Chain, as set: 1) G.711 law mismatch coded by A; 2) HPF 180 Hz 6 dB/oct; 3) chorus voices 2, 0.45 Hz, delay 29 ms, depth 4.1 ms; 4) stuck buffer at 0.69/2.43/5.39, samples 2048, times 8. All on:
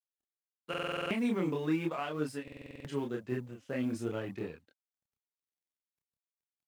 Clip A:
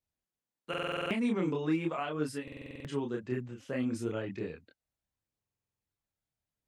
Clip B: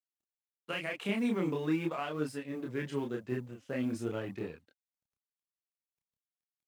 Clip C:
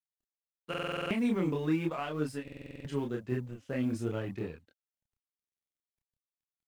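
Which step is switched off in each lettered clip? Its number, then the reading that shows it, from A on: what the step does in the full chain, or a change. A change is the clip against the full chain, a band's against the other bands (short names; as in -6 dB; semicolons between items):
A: 1, distortion -22 dB; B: 4, 1 kHz band -1.5 dB; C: 2, 125 Hz band +4.0 dB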